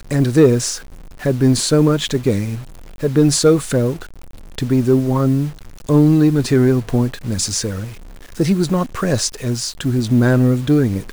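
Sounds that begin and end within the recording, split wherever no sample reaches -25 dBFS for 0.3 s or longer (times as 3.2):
1.23–2.61
3.03–4.03
4.58–5.5
5.89–7.89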